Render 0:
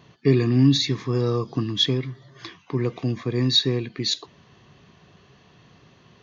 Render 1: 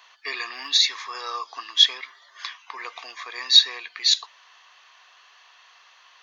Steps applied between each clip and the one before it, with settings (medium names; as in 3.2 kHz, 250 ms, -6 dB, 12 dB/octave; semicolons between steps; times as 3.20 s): high-pass 910 Hz 24 dB/octave; trim +6 dB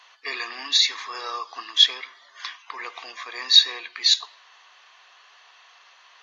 reverberation RT60 0.70 s, pre-delay 9 ms, DRR 18 dB; AAC 32 kbps 44.1 kHz